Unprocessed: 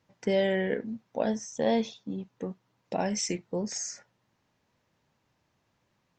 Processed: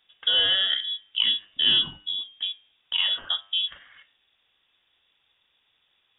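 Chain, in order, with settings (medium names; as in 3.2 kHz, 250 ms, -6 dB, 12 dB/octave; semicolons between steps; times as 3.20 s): frequency inversion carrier 3.6 kHz; de-hum 100.5 Hz, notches 32; trim +5 dB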